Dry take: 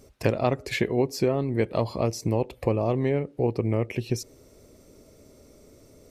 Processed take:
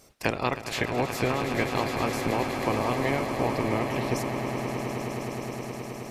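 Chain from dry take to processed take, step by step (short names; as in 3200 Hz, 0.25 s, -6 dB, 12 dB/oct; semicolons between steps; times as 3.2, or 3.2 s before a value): spectral limiter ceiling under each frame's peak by 17 dB; swelling echo 0.105 s, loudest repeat 8, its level -11.5 dB; gain -3.5 dB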